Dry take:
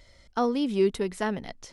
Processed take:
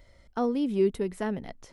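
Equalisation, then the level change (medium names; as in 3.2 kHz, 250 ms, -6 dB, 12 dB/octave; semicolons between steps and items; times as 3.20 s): peaking EQ 5.1 kHz -9 dB 2.2 oct; dynamic bell 1.1 kHz, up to -5 dB, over -41 dBFS, Q 0.91; 0.0 dB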